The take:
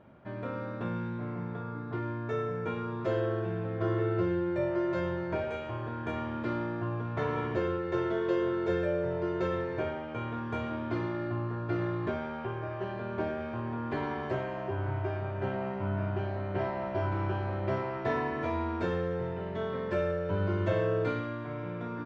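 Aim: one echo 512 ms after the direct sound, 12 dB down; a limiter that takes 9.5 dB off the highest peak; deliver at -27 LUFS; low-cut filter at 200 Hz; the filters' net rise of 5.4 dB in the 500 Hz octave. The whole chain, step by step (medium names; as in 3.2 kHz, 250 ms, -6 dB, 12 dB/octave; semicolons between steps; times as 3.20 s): high-pass 200 Hz; peaking EQ 500 Hz +7 dB; peak limiter -21.5 dBFS; delay 512 ms -12 dB; trim +4 dB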